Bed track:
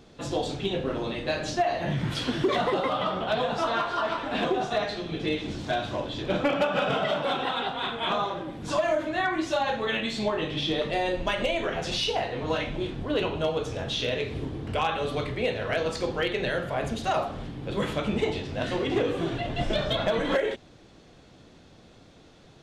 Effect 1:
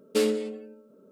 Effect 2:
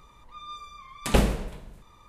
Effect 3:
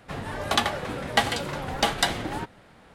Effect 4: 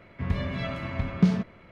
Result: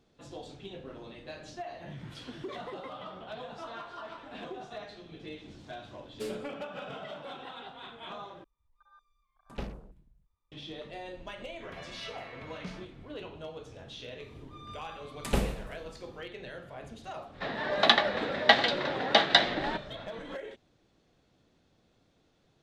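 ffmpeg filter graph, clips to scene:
-filter_complex "[2:a]asplit=2[a][b];[0:a]volume=-15.5dB[c];[a]afwtdn=0.0178[d];[4:a]highpass=f=1.1k:p=1[e];[3:a]highpass=f=180:w=0.5412,highpass=f=180:w=1.3066,equalizer=f=620:t=q:w=4:g=7,equalizer=f=1.8k:t=q:w=4:g=7,equalizer=f=3.8k:t=q:w=4:g=9,lowpass=f=5k:w=0.5412,lowpass=f=5k:w=1.3066[f];[c]asplit=2[g][h];[g]atrim=end=8.444[i];[d]atrim=end=2.08,asetpts=PTS-STARTPTS,volume=-17.5dB[j];[h]atrim=start=10.516[k];[1:a]atrim=end=1.11,asetpts=PTS-STARTPTS,volume=-14dB,afade=t=in:d=0.004:c=hsin,afade=t=out:st=1.106:d=0.004:c=hsin,adelay=6050[l];[e]atrim=end=1.71,asetpts=PTS-STARTPTS,volume=-7.5dB,afade=t=in:d=0.004:c=hsin,afade=t=out:st=1.706:d=0.004:c=hsin,adelay=11420[m];[b]atrim=end=2.08,asetpts=PTS-STARTPTS,volume=-7.5dB,afade=t=in:d=0.004:c=hsin,afade=t=out:st=2.076:d=0.004:c=hsin,adelay=14190[n];[f]atrim=end=2.94,asetpts=PTS-STARTPTS,volume=-2dB,afade=t=in:d=0.05,afade=t=out:st=2.89:d=0.05,adelay=763812S[o];[i][j]acrossfade=d=0.004:c1=hsin:c2=hsin[p];[p][k]acrossfade=d=0.004:c1=hsin:c2=hsin[q];[q][l][m][n][o]amix=inputs=5:normalize=0"

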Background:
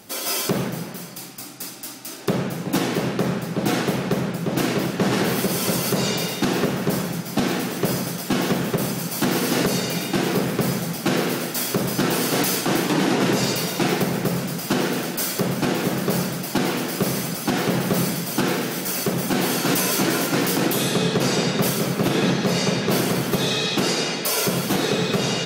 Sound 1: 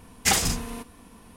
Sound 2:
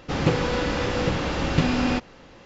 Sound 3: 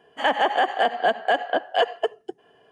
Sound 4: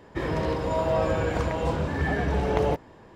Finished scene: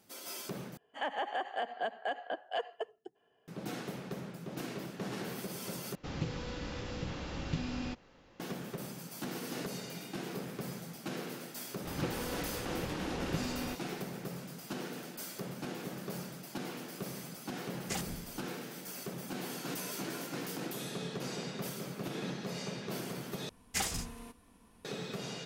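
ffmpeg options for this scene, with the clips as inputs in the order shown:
-filter_complex "[2:a]asplit=2[a][b];[1:a]asplit=2[c][d];[0:a]volume=-19dB[e];[a]acrossover=split=260|3000[f][g][h];[g]acompressor=threshold=-29dB:ratio=6:attack=3.2:release=140:knee=2.83:detection=peak[i];[f][i][h]amix=inputs=3:normalize=0[j];[c]afwtdn=0.0355[k];[e]asplit=4[l][m][n][o];[l]atrim=end=0.774[p];[3:a]atrim=end=2.71,asetpts=PTS-STARTPTS,volume=-15dB[q];[m]atrim=start=3.476:end=5.954[r];[j]atrim=end=2.45,asetpts=PTS-STARTPTS,volume=-13dB[s];[n]atrim=start=8.396:end=23.494[t];[d]atrim=end=1.36,asetpts=PTS-STARTPTS,volume=-12.5dB[u];[o]atrim=start=24.846[v];[b]atrim=end=2.45,asetpts=PTS-STARTPTS,volume=-16dB,afade=t=in:d=0.004:c=hsin,afade=t=out:st=2.446:d=0.004:c=hsin,adelay=11760[w];[k]atrim=end=1.36,asetpts=PTS-STARTPTS,volume=-17.5dB,afade=t=in:d=0.004:c=hsin,afade=t=out:st=1.356:d=0.004:c=hsin,adelay=777924S[x];[p][q]acrossfade=d=0.004:c1=hsin:c2=hsin[y];[y][r]acrossfade=d=0.004:c1=hsin:c2=hsin[z];[z][s]acrossfade=d=0.004:c1=hsin:c2=hsin[aa];[aa][t]acrossfade=d=0.004:c1=hsin:c2=hsin[ab];[ab][u]acrossfade=d=0.004:c1=hsin:c2=hsin[ac];[ac][v]acrossfade=d=0.004:c1=hsin:c2=hsin[ad];[ad][w][x]amix=inputs=3:normalize=0"

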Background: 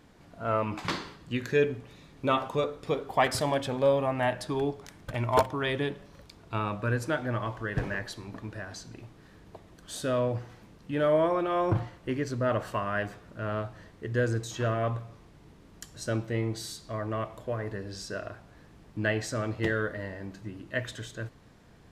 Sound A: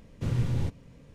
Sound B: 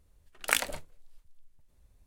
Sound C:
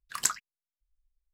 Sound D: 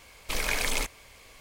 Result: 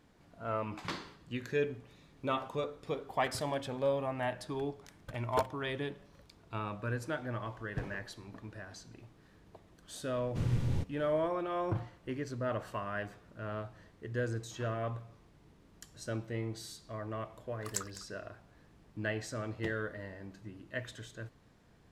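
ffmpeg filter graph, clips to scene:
-filter_complex "[0:a]volume=-7.5dB[a];[3:a]asplit=2[b][c];[c]adelay=204.1,volume=-13dB,highshelf=f=4k:g=-4.59[d];[b][d]amix=inputs=2:normalize=0[e];[1:a]atrim=end=1.14,asetpts=PTS-STARTPTS,volume=-4dB,afade=t=in:d=0.004:c=hsin,afade=t=out:st=1.136:d=0.004:c=hsin,adelay=10140[f];[e]atrim=end=1.33,asetpts=PTS-STARTPTS,volume=-10.5dB,afade=t=in:d=0.004:c=hsin,afade=t=out:st=1.326:d=0.004:c=hsin,adelay=17510[g];[a][f][g]amix=inputs=3:normalize=0"

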